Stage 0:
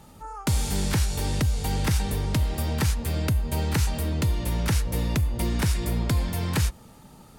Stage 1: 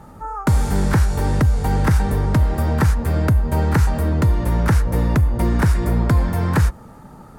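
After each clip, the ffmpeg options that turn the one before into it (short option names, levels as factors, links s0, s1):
-af "highshelf=f=2100:t=q:w=1.5:g=-10,volume=2.51"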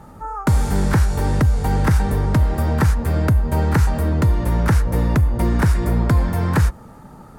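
-af anull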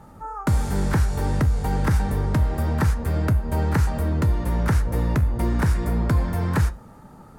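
-af "flanger=delay=9.7:depth=5.4:regen=-76:speed=0.29:shape=triangular"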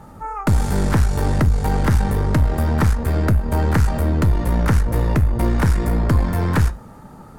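-af "aeval=exprs='(tanh(6.31*val(0)+0.5)-tanh(0.5))/6.31':c=same,volume=2.24"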